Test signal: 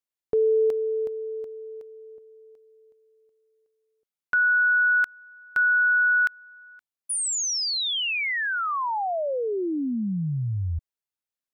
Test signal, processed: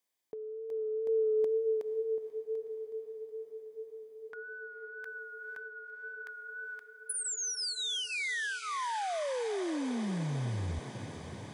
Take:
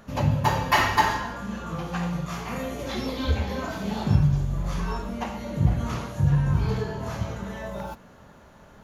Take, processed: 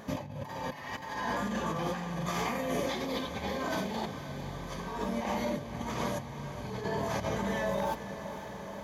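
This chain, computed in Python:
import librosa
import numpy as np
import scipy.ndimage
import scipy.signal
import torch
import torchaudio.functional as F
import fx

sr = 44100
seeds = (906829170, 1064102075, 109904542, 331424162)

y = fx.peak_eq(x, sr, hz=92.0, db=-5.0, octaves=2.0)
y = fx.over_compress(y, sr, threshold_db=-35.0, ratio=-1.0)
y = fx.wow_flutter(y, sr, seeds[0], rate_hz=2.1, depth_cents=29.0)
y = fx.notch_comb(y, sr, f0_hz=1400.0)
y = fx.echo_diffused(y, sr, ms=493, feedback_pct=78, wet_db=-12)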